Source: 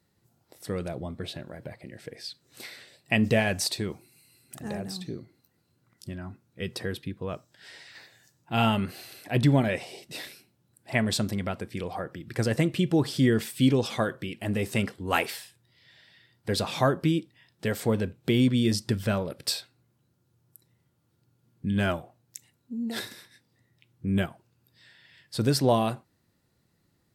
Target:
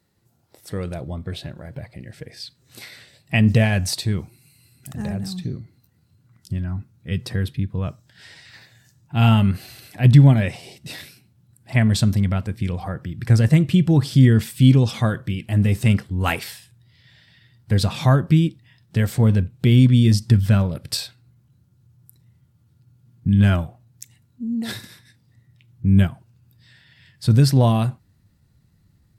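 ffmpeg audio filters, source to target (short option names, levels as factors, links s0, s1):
-af "atempo=0.93,asubboost=boost=5.5:cutoff=160,volume=1.41"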